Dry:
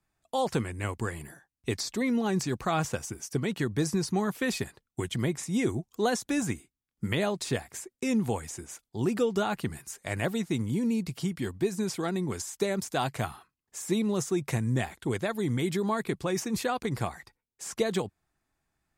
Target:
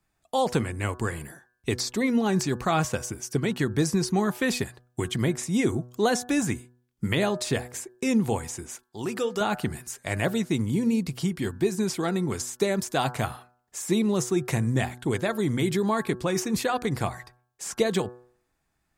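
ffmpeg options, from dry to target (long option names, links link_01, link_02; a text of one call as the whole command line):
ffmpeg -i in.wav -filter_complex "[0:a]bandreject=frequency=122.8:width_type=h:width=4,bandreject=frequency=245.6:width_type=h:width=4,bandreject=frequency=368.4:width_type=h:width=4,bandreject=frequency=491.2:width_type=h:width=4,bandreject=frequency=614:width_type=h:width=4,bandreject=frequency=736.8:width_type=h:width=4,bandreject=frequency=859.6:width_type=h:width=4,bandreject=frequency=982.4:width_type=h:width=4,bandreject=frequency=1105.2:width_type=h:width=4,bandreject=frequency=1228:width_type=h:width=4,bandreject=frequency=1350.8:width_type=h:width=4,bandreject=frequency=1473.6:width_type=h:width=4,bandreject=frequency=1596.4:width_type=h:width=4,bandreject=frequency=1719.2:width_type=h:width=4,asettb=1/sr,asplit=3[link_01][link_02][link_03];[link_01]atrim=end=8.834[link_04];[link_02]atrim=start=8.83:end=9.41,asetpts=PTS-STARTPTS,afade=type=in:duration=0.004:curve=qsin,afade=type=out:start_time=0.576:duration=0.004:curve=qsin,lowshelf=frequency=370:gain=-11.5[link_05];[link_03]atrim=start=9.406[link_06];[link_04][link_05]acrossfade=duration=0.004:curve1=hsin:curve2=qsin[link_07];[link_07][link_06]acrossfade=duration=0.004:curve1=qsin:curve2=hsin,volume=4dB" out.wav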